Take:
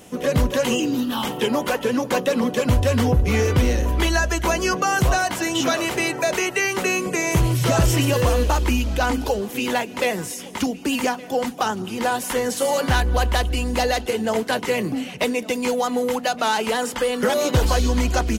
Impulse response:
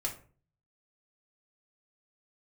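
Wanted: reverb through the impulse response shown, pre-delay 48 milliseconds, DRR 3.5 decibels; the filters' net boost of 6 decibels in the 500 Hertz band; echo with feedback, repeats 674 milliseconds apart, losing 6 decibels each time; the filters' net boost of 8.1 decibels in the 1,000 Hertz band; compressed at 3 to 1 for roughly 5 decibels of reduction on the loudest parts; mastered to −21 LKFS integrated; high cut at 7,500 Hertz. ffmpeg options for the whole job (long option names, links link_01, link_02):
-filter_complex "[0:a]lowpass=7500,equalizer=frequency=500:width_type=o:gain=4.5,equalizer=frequency=1000:width_type=o:gain=9,acompressor=threshold=-17dB:ratio=3,aecho=1:1:674|1348|2022|2696|3370|4044:0.501|0.251|0.125|0.0626|0.0313|0.0157,asplit=2[link_01][link_02];[1:a]atrim=start_sample=2205,adelay=48[link_03];[link_02][link_03]afir=irnorm=-1:irlink=0,volume=-6dB[link_04];[link_01][link_04]amix=inputs=2:normalize=0,volume=-2.5dB"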